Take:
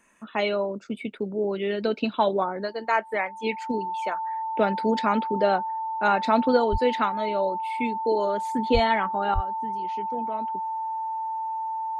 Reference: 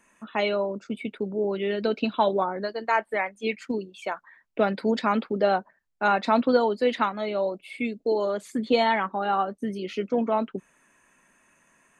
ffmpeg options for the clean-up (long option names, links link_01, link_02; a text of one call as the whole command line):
ffmpeg -i in.wav -filter_complex "[0:a]bandreject=frequency=890:width=30,asplit=3[link_01][link_02][link_03];[link_01]afade=type=out:start_time=6.71:duration=0.02[link_04];[link_02]highpass=frequency=140:width=0.5412,highpass=frequency=140:width=1.3066,afade=type=in:start_time=6.71:duration=0.02,afade=type=out:start_time=6.83:duration=0.02[link_05];[link_03]afade=type=in:start_time=6.83:duration=0.02[link_06];[link_04][link_05][link_06]amix=inputs=3:normalize=0,asplit=3[link_07][link_08][link_09];[link_07]afade=type=out:start_time=8.73:duration=0.02[link_10];[link_08]highpass=frequency=140:width=0.5412,highpass=frequency=140:width=1.3066,afade=type=in:start_time=8.73:duration=0.02,afade=type=out:start_time=8.85:duration=0.02[link_11];[link_09]afade=type=in:start_time=8.85:duration=0.02[link_12];[link_10][link_11][link_12]amix=inputs=3:normalize=0,asplit=3[link_13][link_14][link_15];[link_13]afade=type=out:start_time=9.34:duration=0.02[link_16];[link_14]highpass=frequency=140:width=0.5412,highpass=frequency=140:width=1.3066,afade=type=in:start_time=9.34:duration=0.02,afade=type=out:start_time=9.46:duration=0.02[link_17];[link_15]afade=type=in:start_time=9.46:duration=0.02[link_18];[link_16][link_17][link_18]amix=inputs=3:normalize=0,asetnsamples=nb_out_samples=441:pad=0,asendcmd='9.34 volume volume 10dB',volume=0dB" out.wav